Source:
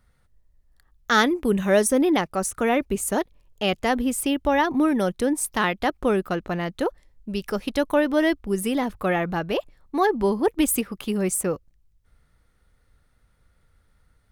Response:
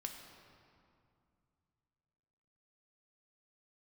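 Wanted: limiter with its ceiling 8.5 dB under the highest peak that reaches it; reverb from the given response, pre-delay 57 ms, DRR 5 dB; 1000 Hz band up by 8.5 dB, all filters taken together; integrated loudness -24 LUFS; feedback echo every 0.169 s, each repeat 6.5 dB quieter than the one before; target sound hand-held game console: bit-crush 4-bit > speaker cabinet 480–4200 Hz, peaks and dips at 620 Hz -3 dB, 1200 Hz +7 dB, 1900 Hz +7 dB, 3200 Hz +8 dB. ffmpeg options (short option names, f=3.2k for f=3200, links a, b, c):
-filter_complex "[0:a]equalizer=f=1k:t=o:g=8,alimiter=limit=-11.5dB:level=0:latency=1,aecho=1:1:169|338|507|676|845|1014:0.473|0.222|0.105|0.0491|0.0231|0.0109,asplit=2[a][b];[1:a]atrim=start_sample=2205,adelay=57[c];[b][c]afir=irnorm=-1:irlink=0,volume=-3dB[d];[a][d]amix=inputs=2:normalize=0,acrusher=bits=3:mix=0:aa=0.000001,highpass=480,equalizer=f=620:t=q:w=4:g=-3,equalizer=f=1.2k:t=q:w=4:g=7,equalizer=f=1.9k:t=q:w=4:g=7,equalizer=f=3.2k:t=q:w=4:g=8,lowpass=f=4.2k:w=0.5412,lowpass=f=4.2k:w=1.3066,volume=-4dB"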